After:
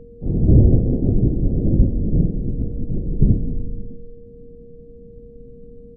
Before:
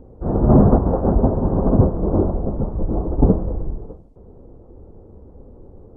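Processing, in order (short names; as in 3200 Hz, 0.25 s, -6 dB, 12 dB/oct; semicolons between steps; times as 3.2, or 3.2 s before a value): pitch shift -12 st; Schroeder reverb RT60 1.4 s, combs from 32 ms, DRR 7.5 dB; whine 470 Hz -42 dBFS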